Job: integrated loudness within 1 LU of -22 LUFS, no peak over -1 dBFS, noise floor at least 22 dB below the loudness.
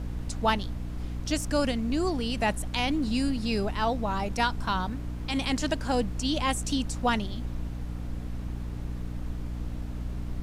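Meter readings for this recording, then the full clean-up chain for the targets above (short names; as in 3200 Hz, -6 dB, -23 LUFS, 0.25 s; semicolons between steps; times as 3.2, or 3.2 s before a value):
hum 60 Hz; harmonics up to 300 Hz; hum level -33 dBFS; noise floor -35 dBFS; noise floor target -52 dBFS; loudness -30.0 LUFS; peak -11.0 dBFS; loudness target -22.0 LUFS
-> notches 60/120/180/240/300 Hz; noise print and reduce 17 dB; gain +8 dB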